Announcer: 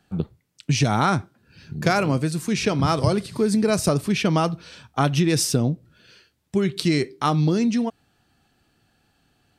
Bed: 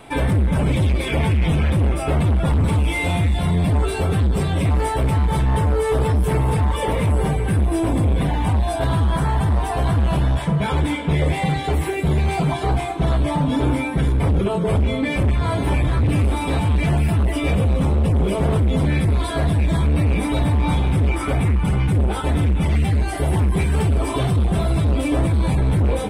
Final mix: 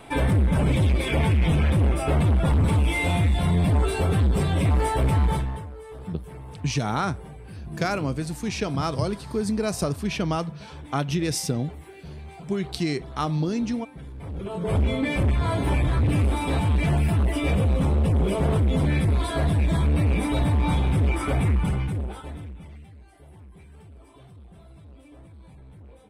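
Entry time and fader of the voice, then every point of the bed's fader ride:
5.95 s, -5.5 dB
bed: 5.3 s -2.5 dB
5.71 s -21.5 dB
14.14 s -21.5 dB
14.78 s -3.5 dB
21.61 s -3.5 dB
22.94 s -29.5 dB

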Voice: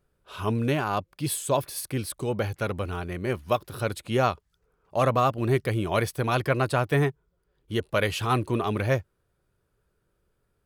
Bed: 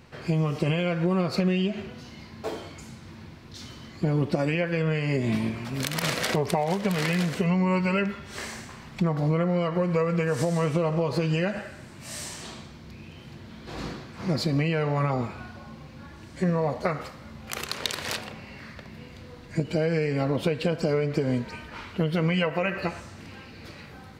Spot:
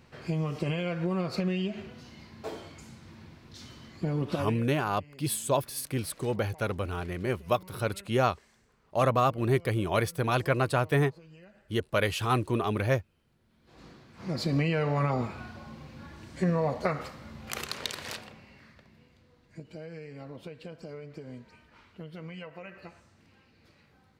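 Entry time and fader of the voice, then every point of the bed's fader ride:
4.00 s, -2.0 dB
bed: 4.4 s -5.5 dB
4.7 s -27.5 dB
13.38 s -27.5 dB
14.53 s -2 dB
17.5 s -2 dB
19.23 s -18 dB

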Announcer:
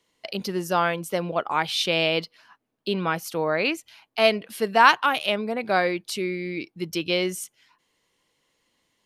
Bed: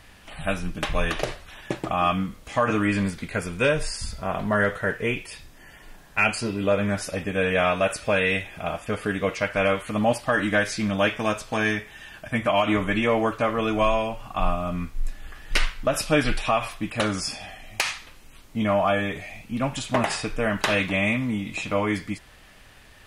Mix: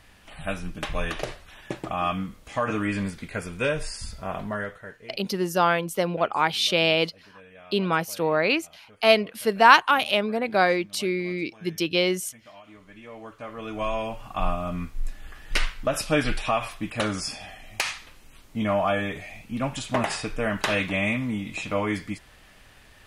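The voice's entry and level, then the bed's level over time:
4.85 s, +1.5 dB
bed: 4.38 s -4 dB
5.32 s -27 dB
12.78 s -27 dB
14.13 s -2 dB

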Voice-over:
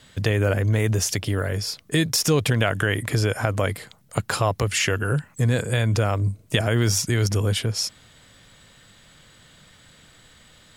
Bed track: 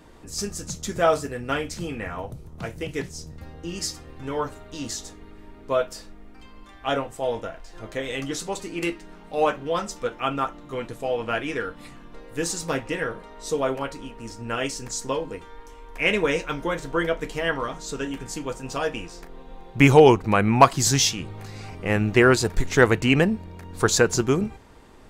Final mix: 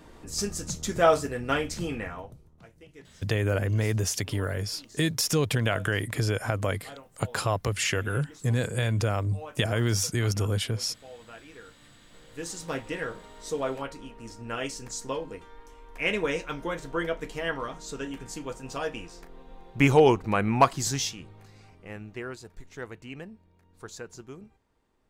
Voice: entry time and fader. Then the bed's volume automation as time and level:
3.05 s, -5.0 dB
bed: 1.95 s -0.5 dB
2.68 s -20.5 dB
11.52 s -20.5 dB
12.8 s -5.5 dB
20.61 s -5.5 dB
22.38 s -22.5 dB

